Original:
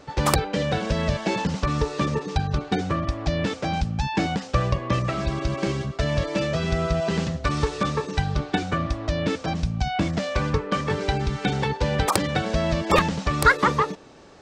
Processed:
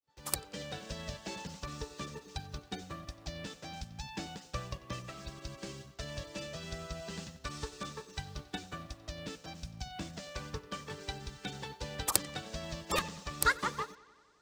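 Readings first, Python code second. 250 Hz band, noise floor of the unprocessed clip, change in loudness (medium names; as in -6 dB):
-19.5 dB, -41 dBFS, -15.0 dB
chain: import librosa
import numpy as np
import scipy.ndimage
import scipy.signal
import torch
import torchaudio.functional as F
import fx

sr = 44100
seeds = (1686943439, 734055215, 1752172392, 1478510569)

p1 = fx.fade_in_head(x, sr, length_s=0.54)
p2 = librosa.effects.preemphasis(p1, coef=0.8, zi=[0.0])
p3 = fx.quant_dither(p2, sr, seeds[0], bits=8, dither='none')
p4 = p2 + (p3 * 10.0 ** (-8.0 / 20.0))
p5 = fx.notch(p4, sr, hz=2200.0, q=29.0)
p6 = p5 + fx.echo_bbd(p5, sr, ms=92, stages=4096, feedback_pct=71, wet_db=-16.0, dry=0)
p7 = fx.upward_expand(p6, sr, threshold_db=-41.0, expansion=1.5)
y = p7 * 10.0 ** (-2.5 / 20.0)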